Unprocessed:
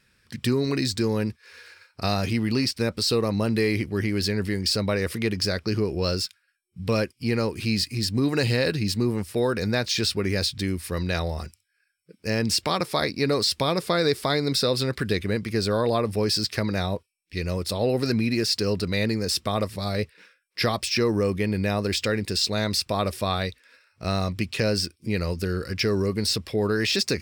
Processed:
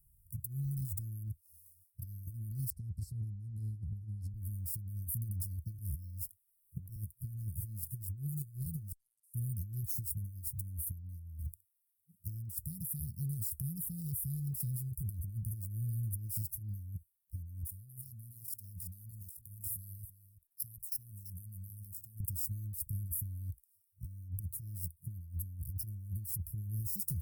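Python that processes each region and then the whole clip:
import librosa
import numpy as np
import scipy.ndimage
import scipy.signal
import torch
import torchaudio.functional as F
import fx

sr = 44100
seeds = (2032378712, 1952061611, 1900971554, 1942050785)

y = fx.chain(x, sr, fx.lowpass(hz=4300.0, slope=12),
    fx.band_squash(depth_pct=40), at=(2.7, 4.34))
y = fx.chain(y, sr, fx.notch(hz=520.0, q=5.4),
    fx.band_squash(depth_pct=100), at=(5.78, 6.96))
y = fx.chain(y, sr, fx.ladder_bandpass(hz=5100.0, resonance_pct=30),
    fx.level_steps(step_db=16), at=(8.92, 9.34))
y = fx.chain(y, sr, fx.tilt_shelf(db=-6.0, hz=900.0),
    fx.level_steps(step_db=20),
    fx.echo_single(ms=335, db=-14.0), at=(17.66, 22.2))
y = scipy.signal.sosfilt(scipy.signal.cheby2(4, 80, [750.0, 3300.0], 'bandstop', fs=sr, output='sos'), y)
y = fx.tone_stack(y, sr, knobs='10-0-10')
y = fx.over_compress(y, sr, threshold_db=-46.0, ratio=-0.5)
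y = y * librosa.db_to_amplitude(8.0)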